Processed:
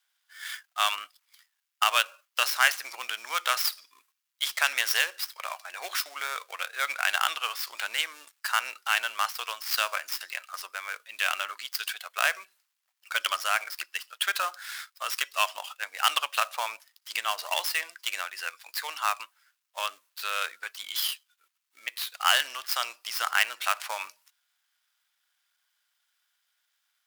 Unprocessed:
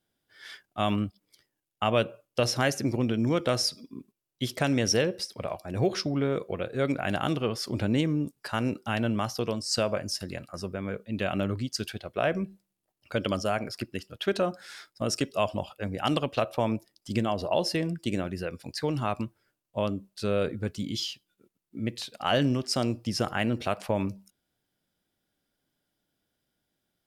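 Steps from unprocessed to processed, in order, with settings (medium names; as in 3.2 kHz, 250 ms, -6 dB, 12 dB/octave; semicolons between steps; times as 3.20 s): dead-time distortion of 0.066 ms; high-pass 1.1 kHz 24 dB/octave; trim +9 dB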